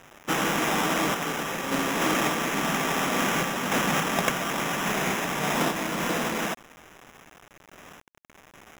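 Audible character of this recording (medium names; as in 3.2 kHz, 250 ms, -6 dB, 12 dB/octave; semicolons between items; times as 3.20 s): aliases and images of a low sample rate 4.4 kHz, jitter 0%; random-step tremolo; a quantiser's noise floor 8-bit, dither none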